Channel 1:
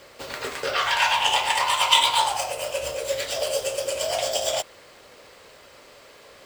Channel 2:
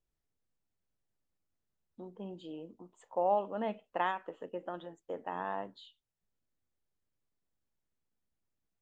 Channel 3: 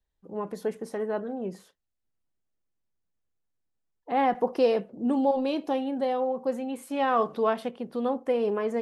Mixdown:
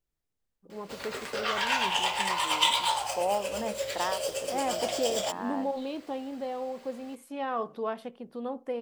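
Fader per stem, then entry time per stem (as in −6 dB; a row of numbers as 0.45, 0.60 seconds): −6.5, +0.5, −7.5 decibels; 0.70, 0.00, 0.40 seconds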